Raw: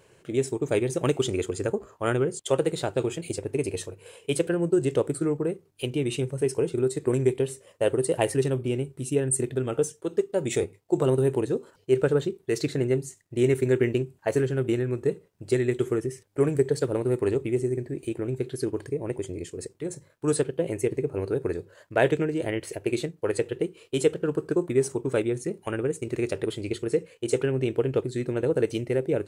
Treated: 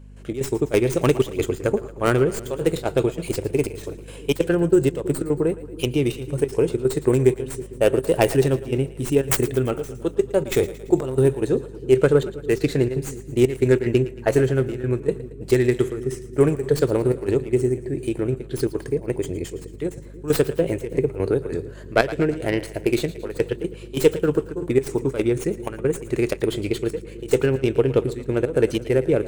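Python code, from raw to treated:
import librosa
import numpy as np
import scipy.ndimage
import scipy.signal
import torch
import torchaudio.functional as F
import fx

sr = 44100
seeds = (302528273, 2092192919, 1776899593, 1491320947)

y = fx.tracing_dist(x, sr, depth_ms=0.25)
y = fx.step_gate(y, sr, bpm=184, pattern='..xx.xxx.xxxxxx', floor_db=-12.0, edge_ms=4.5)
y = fx.add_hum(y, sr, base_hz=50, snr_db=21)
y = fx.echo_split(y, sr, split_hz=430.0, low_ms=320, high_ms=113, feedback_pct=52, wet_db=-15.5)
y = fx.band_squash(y, sr, depth_pct=70, at=(20.92, 21.55))
y = F.gain(torch.from_numpy(y), 6.0).numpy()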